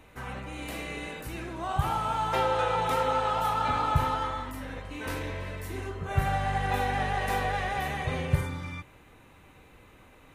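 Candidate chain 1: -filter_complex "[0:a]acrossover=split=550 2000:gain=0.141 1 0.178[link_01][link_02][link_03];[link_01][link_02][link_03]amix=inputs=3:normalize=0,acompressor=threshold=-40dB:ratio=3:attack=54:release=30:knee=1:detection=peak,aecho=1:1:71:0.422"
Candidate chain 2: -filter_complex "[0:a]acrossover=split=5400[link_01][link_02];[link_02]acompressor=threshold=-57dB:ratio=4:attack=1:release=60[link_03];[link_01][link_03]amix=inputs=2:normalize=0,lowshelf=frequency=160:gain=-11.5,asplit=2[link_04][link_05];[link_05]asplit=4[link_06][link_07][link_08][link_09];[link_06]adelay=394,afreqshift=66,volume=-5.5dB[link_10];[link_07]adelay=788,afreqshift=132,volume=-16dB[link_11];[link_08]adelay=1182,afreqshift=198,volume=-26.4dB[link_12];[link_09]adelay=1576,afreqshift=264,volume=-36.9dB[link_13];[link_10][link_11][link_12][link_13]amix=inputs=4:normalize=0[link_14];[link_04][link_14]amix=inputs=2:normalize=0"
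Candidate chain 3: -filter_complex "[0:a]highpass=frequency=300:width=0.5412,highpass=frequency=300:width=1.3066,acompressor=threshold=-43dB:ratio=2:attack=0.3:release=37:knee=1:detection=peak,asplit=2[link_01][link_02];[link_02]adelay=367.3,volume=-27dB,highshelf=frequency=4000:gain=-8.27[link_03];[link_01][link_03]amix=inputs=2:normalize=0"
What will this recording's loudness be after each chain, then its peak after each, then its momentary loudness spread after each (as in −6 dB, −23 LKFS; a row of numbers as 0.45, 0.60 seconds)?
−36.0, −30.0, −40.5 LKFS; −22.0, −15.0, −28.0 dBFS; 12, 12, 19 LU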